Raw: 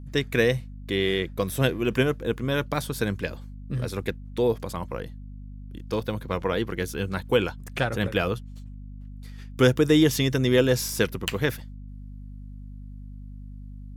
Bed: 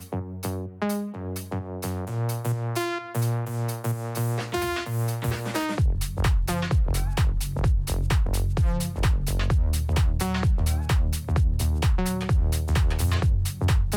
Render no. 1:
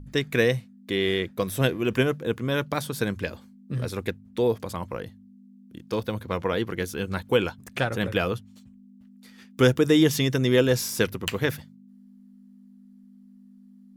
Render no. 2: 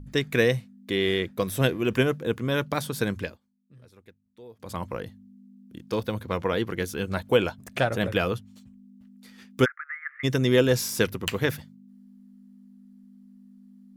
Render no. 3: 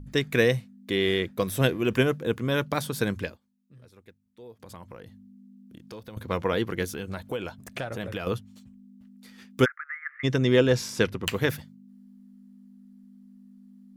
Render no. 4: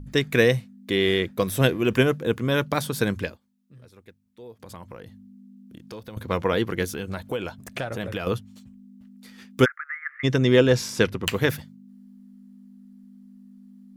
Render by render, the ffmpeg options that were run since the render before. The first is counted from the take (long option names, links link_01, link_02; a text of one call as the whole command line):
ffmpeg -i in.wav -af "bandreject=frequency=50:width_type=h:width=4,bandreject=frequency=100:width_type=h:width=4,bandreject=frequency=150:width_type=h:width=4" out.wav
ffmpeg -i in.wav -filter_complex "[0:a]asettb=1/sr,asplit=3[link_01][link_02][link_03];[link_01]atrim=end=7.094[link_04];[link_02]atrim=start=7.09:end=8.11,asetpts=PTS-STARTPTS,afade=type=in:duration=0.004:curve=qsin,afade=type=out:start_time=1.016:duration=0.004:curve=qsin,equalizer=frequency=640:width_type=o:width=0.31:gain=7.5[link_05];[link_03]atrim=start=8.106[link_06];[link_04][link_05]acrossfade=duration=0.004:curve1=hsin:curve2=qsin[link_07];[link_07][link_06]acrossfade=duration=0.004:curve1=qsin:curve2=hsin,asplit=3[link_08][link_09][link_10];[link_08]afade=type=out:start_time=9.64:duration=0.02[link_11];[link_09]asuperpass=centerf=1600:order=12:qfactor=1.7,afade=type=in:start_time=9.64:duration=0.02,afade=type=out:start_time=10.23:duration=0.02[link_12];[link_10]afade=type=in:start_time=10.23:duration=0.02[link_13];[link_11][link_12][link_13]amix=inputs=3:normalize=0,asplit=3[link_14][link_15][link_16];[link_14]atrim=end=3.38,asetpts=PTS-STARTPTS,afade=type=out:start_time=3.2:duration=0.18:silence=0.0668344[link_17];[link_15]atrim=start=3.38:end=4.58,asetpts=PTS-STARTPTS,volume=-23.5dB[link_18];[link_16]atrim=start=4.58,asetpts=PTS-STARTPTS,afade=type=in:duration=0.18:silence=0.0668344[link_19];[link_17][link_18][link_19]concat=n=3:v=0:a=1" out.wav
ffmpeg -i in.wav -filter_complex "[0:a]asettb=1/sr,asplit=3[link_01][link_02][link_03];[link_01]atrim=end=4.534[link_04];[link_02]atrim=start=4.53:end=6.17,asetpts=PTS-STARTPTS,afade=type=in:duration=0.004:curve=qsin,afade=type=out:start_time=1.636:duration=0.004:curve=qsin,acompressor=threshold=-43dB:ratio=3:attack=3.2:release=140:knee=1:detection=peak[link_05];[link_03]atrim=start=6.166[link_06];[link_04][link_05]acrossfade=duration=0.004:curve1=hsin:curve2=qsin[link_07];[link_07][link_06]acrossfade=duration=0.004:curve1=qsin:curve2=hsin,asettb=1/sr,asplit=3[link_08][link_09][link_10];[link_08]atrim=end=6.854[link_11];[link_09]atrim=start=6.85:end=8.27,asetpts=PTS-STARTPTS,afade=type=in:duration=0.004:curve=qsin,afade=type=out:start_time=1.416:duration=0.004:curve=qsin,acompressor=threshold=-31dB:ratio=3:attack=3.2:release=140:knee=1:detection=peak[link_12];[link_10]atrim=start=8.266[link_13];[link_11][link_12]acrossfade=duration=0.004:curve1=hsin:curve2=qsin[link_14];[link_14][link_13]acrossfade=duration=0.004:curve1=qsin:curve2=hsin,asettb=1/sr,asplit=3[link_15][link_16][link_17];[link_15]atrim=end=9.784[link_18];[link_16]atrim=start=9.78:end=11.24,asetpts=PTS-STARTPTS,afade=type=in:duration=0.004:curve=qsin,afade=type=out:start_time=1.456:duration=0.004:curve=qsin,adynamicsmooth=sensitivity=0.5:basefreq=7100[link_19];[link_17]atrim=start=11.236[link_20];[link_18][link_19]acrossfade=duration=0.004:curve1=hsin:curve2=qsin[link_21];[link_21][link_20]acrossfade=duration=0.004:curve1=qsin:curve2=hsin" out.wav
ffmpeg -i in.wav -af "volume=3dB" out.wav